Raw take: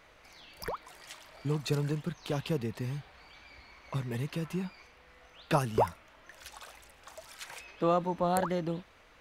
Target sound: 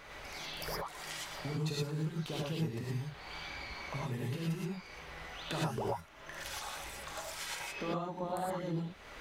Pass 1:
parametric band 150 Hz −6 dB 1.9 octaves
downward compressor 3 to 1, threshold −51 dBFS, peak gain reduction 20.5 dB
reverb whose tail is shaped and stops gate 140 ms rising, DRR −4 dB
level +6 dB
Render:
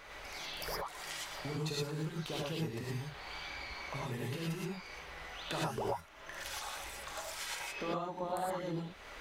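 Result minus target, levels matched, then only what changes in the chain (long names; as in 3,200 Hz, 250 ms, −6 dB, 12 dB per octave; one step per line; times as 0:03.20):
125 Hz band −2.5 dB
remove: parametric band 150 Hz −6 dB 1.9 octaves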